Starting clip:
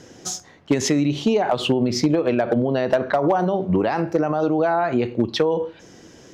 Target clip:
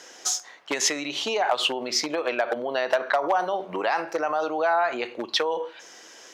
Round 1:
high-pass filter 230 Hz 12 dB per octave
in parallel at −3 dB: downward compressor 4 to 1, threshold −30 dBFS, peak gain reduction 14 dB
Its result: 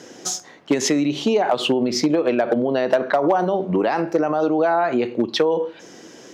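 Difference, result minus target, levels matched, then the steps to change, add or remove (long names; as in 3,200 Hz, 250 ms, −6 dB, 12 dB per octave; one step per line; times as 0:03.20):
250 Hz band +9.5 dB
change: high-pass filter 830 Hz 12 dB per octave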